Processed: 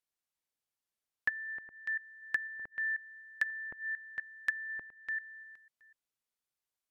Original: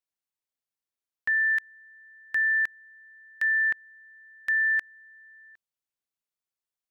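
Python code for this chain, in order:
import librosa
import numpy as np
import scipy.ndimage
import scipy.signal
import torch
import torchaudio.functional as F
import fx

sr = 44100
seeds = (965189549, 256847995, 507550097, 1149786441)

y = fx.reverse_delay(x, sr, ms=247, wet_db=-10)
y = fx.env_lowpass_down(y, sr, base_hz=630.0, full_db=-24.0)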